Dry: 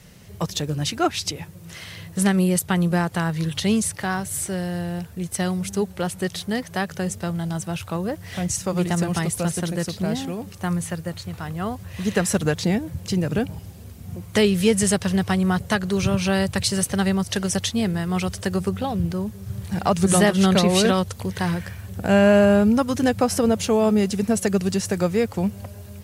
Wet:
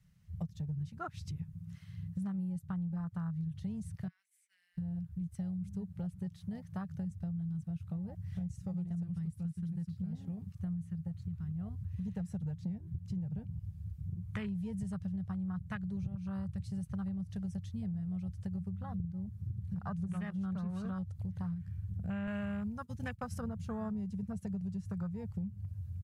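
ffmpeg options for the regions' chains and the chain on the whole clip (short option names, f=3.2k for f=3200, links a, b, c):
-filter_complex "[0:a]asettb=1/sr,asplit=3[a][b][c];[a]atrim=end=4.084[d];[b]atrim=start=4.08:end=4.78,asetpts=PTS-STARTPTS,afade=t=in:d=0.004:c=qsin,afade=t=out:st=0.696:d=0.004:c=qsin,agate=range=-33dB:threshold=-19dB:ratio=3:release=100:detection=peak,highpass=f=2.2k:t=q:w=4.2,acompressor=threshold=-40dB:ratio=10:attack=3.2:release=140:knee=1:detection=peak[e];[c]atrim=start=4.776[f];[d][e]acrossfade=d=0.004:c1=hsin:c2=qsin[g];[g][f]acrossfade=d=0.004:c1=qsin:c2=hsin,asettb=1/sr,asplit=3[h][i][j];[h]atrim=end=9.034[k];[i]atrim=start=9.03:end=10.13,asetpts=PTS-STARTPTS,afade=t=in:d=0.004:c=qsin,afade=t=out:st=1.096:d=0.004:c=qsin,equalizer=f=610:t=o:w=0.55:g=-14.5,bandreject=f=6.3k:w=13[l];[j]atrim=start=10.126[m];[k][l]acrossfade=d=0.004:c1=hsin:c2=qsin[n];[n][m]acrossfade=d=0.004:c1=qsin:c2=hsin,asettb=1/sr,asplit=3[o][p][q];[o]atrim=end=22.274[r];[p]atrim=start=22.27:end=23.41,asetpts=PTS-STARTPTS,afade=t=in:d=0.004:c=qsin,afade=t=out:st=1.136:d=0.004:c=qsin,highshelf=f=2.3k:g=8.5,agate=range=-33dB:threshold=-19dB:ratio=3:release=100:detection=peak[s];[q]atrim=start=23.406[t];[r][s]acrossfade=d=0.004:c1=hsin:c2=qsin[u];[u][t]acrossfade=d=0.004:c1=qsin:c2=hsin,afwtdn=0.0631,firequalizer=gain_entry='entry(170,0);entry(280,-23);entry(1200,-9);entry(2900,-12)':delay=0.05:min_phase=1,acompressor=threshold=-36dB:ratio=6"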